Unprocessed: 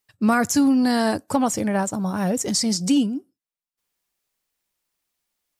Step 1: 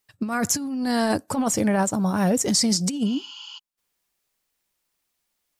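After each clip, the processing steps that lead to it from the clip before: spectral replace 3.08–3.56 s, 800–7300 Hz before; compressor with a negative ratio -21 dBFS, ratio -0.5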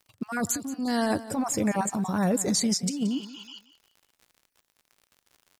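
random holes in the spectrogram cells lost 23%; crackle 72 per s -40 dBFS; feedback delay 177 ms, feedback 29%, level -16 dB; trim -3.5 dB

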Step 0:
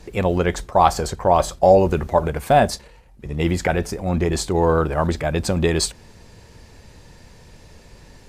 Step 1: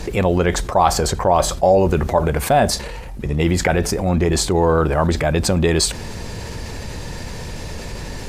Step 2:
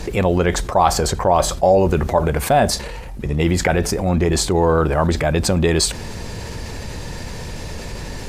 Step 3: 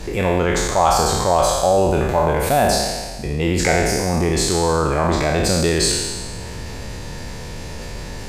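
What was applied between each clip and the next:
level flattener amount 50%; trim -2 dB
no audible change
spectral sustain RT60 1.42 s; trim -4 dB

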